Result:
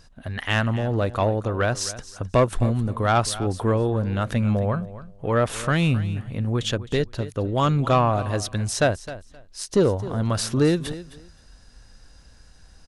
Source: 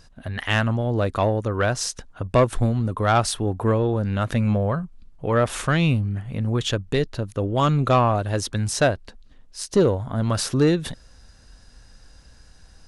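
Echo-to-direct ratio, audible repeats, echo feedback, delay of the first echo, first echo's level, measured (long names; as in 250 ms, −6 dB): −15.5 dB, 2, 18%, 262 ms, −15.5 dB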